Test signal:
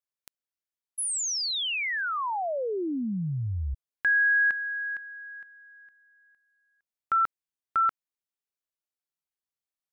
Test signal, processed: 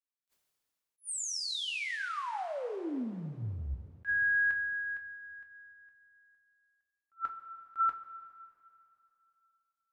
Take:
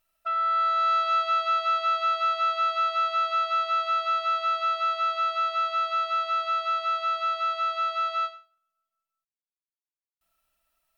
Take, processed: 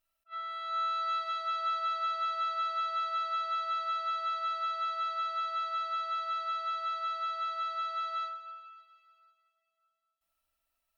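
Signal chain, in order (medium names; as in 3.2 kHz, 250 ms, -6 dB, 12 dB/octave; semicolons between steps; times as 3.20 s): two-slope reverb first 0.2 s, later 2.8 s, from -18 dB, DRR 4 dB; attacks held to a fixed rise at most 420 dB/s; trim -8.5 dB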